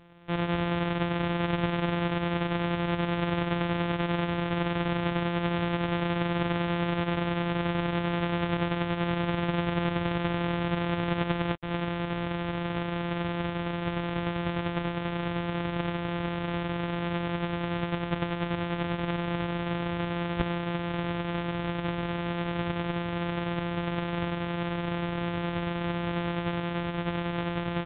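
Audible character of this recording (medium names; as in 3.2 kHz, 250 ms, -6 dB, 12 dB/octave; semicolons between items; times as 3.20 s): a buzz of ramps at a fixed pitch in blocks of 256 samples; µ-law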